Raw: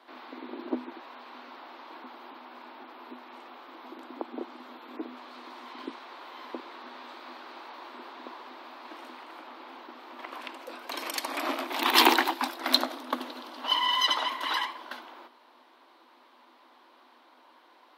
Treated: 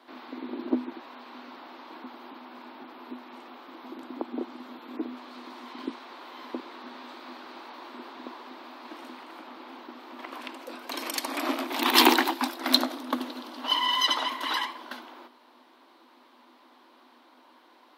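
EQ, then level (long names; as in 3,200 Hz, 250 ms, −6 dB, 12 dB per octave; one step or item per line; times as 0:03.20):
bass and treble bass +14 dB, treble +3 dB
0.0 dB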